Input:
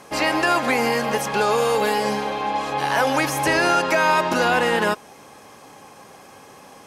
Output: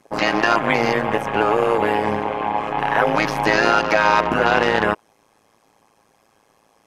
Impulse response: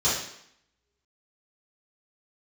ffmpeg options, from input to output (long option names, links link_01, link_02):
-af "afwtdn=0.0282,tremolo=f=110:d=0.947,volume=6dB"